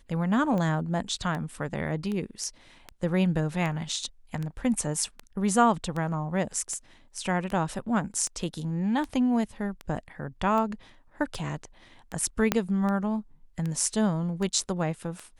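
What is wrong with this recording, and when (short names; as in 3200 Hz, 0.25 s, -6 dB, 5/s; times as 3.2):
tick 78 rpm -21 dBFS
12.52 pop -7 dBFS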